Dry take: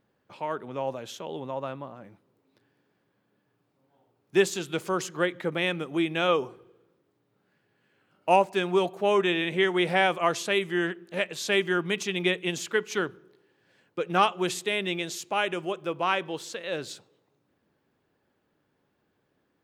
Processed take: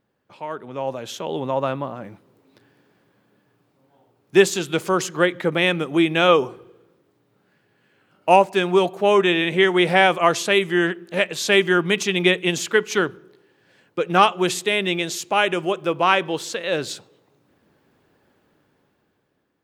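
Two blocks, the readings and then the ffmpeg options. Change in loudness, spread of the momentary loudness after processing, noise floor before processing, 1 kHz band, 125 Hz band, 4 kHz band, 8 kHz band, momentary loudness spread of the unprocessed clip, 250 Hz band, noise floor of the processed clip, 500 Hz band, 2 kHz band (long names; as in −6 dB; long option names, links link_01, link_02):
+7.5 dB, 13 LU, −74 dBFS, +7.5 dB, +8.0 dB, +7.5 dB, +7.5 dB, 12 LU, +7.5 dB, −67 dBFS, +7.5 dB, +7.5 dB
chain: -af "dynaudnorm=framelen=250:gausssize=9:maxgain=11.5dB"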